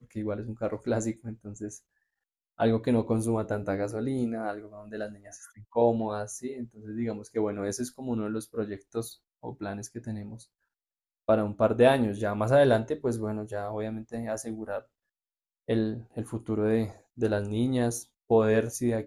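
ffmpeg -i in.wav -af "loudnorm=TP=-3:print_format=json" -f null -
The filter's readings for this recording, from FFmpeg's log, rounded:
"input_i" : "-29.0",
"input_tp" : "-7.4",
"input_lra" : "7.4",
"input_thresh" : "-39.5",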